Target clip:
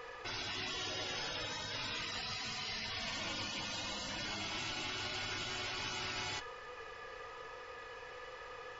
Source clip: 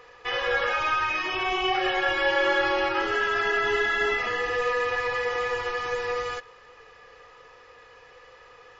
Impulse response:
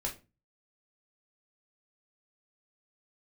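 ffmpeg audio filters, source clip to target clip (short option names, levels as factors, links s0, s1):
-filter_complex "[0:a]asplit=2[s0][s1];[1:a]atrim=start_sample=2205,afade=t=out:st=0.15:d=0.01,atrim=end_sample=7056,adelay=28[s2];[s1][s2]afir=irnorm=-1:irlink=0,volume=0.133[s3];[s0][s3]amix=inputs=2:normalize=0,afftfilt=real='re*lt(hypot(re,im),0.0398)':imag='im*lt(hypot(re,im),0.0398)':win_size=1024:overlap=0.75,volume=1.19"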